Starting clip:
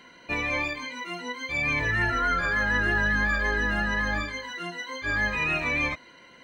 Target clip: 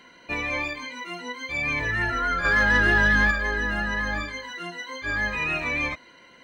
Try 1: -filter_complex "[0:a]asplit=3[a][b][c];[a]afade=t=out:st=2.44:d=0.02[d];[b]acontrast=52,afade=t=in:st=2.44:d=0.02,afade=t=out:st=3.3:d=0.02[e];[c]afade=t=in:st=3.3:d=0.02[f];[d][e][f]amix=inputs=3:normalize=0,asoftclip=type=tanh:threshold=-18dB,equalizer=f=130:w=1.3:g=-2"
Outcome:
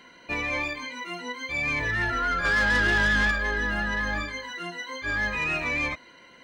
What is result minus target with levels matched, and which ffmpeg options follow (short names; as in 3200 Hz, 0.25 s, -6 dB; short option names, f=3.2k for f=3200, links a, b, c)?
soft clip: distortion +13 dB
-filter_complex "[0:a]asplit=3[a][b][c];[a]afade=t=out:st=2.44:d=0.02[d];[b]acontrast=52,afade=t=in:st=2.44:d=0.02,afade=t=out:st=3.3:d=0.02[e];[c]afade=t=in:st=3.3:d=0.02[f];[d][e][f]amix=inputs=3:normalize=0,asoftclip=type=tanh:threshold=-9dB,equalizer=f=130:w=1.3:g=-2"